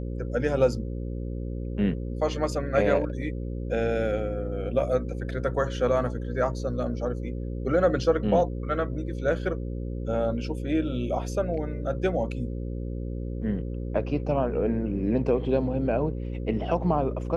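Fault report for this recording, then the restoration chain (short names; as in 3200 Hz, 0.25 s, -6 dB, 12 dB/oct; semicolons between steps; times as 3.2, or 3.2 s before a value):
buzz 60 Hz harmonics 9 -32 dBFS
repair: de-hum 60 Hz, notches 9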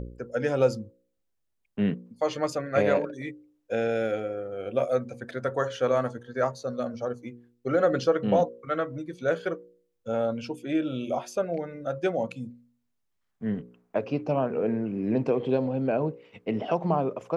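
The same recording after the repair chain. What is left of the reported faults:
none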